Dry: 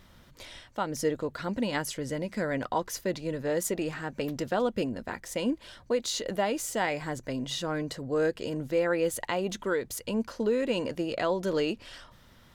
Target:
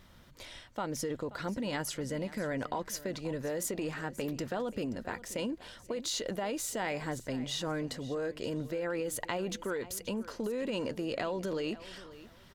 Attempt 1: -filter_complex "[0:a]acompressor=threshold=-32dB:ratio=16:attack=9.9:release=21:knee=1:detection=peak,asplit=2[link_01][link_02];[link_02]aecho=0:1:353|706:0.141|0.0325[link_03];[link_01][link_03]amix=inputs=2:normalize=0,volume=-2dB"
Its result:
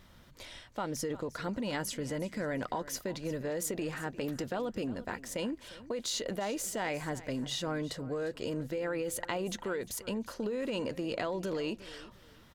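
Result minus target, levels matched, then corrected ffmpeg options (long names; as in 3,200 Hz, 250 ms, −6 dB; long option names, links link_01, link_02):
echo 177 ms early
-filter_complex "[0:a]acompressor=threshold=-32dB:ratio=16:attack=9.9:release=21:knee=1:detection=peak,asplit=2[link_01][link_02];[link_02]aecho=0:1:530|1060:0.141|0.0325[link_03];[link_01][link_03]amix=inputs=2:normalize=0,volume=-2dB"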